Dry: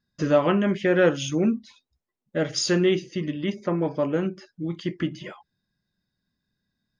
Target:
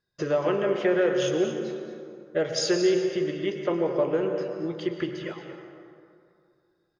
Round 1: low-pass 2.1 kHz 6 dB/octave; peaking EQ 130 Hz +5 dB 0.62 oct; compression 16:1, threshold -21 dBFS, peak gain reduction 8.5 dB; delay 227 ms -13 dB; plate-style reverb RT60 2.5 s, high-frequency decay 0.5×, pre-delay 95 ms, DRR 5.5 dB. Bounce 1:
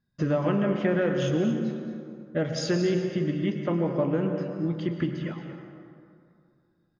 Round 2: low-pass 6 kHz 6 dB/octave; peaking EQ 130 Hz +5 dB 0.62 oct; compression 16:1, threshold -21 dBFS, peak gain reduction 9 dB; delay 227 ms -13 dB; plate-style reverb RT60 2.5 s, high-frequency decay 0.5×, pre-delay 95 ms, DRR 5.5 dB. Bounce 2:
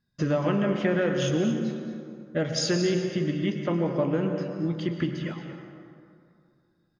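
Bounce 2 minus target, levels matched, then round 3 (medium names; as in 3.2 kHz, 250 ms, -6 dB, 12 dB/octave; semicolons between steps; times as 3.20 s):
250 Hz band +3.0 dB
low-pass 6 kHz 6 dB/octave; peaking EQ 130 Hz +5 dB 0.62 oct; compression 16:1, threshold -21 dBFS, peak gain reduction 9 dB; resonant low shelf 310 Hz -7 dB, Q 3; delay 227 ms -13 dB; plate-style reverb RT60 2.5 s, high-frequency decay 0.5×, pre-delay 95 ms, DRR 5.5 dB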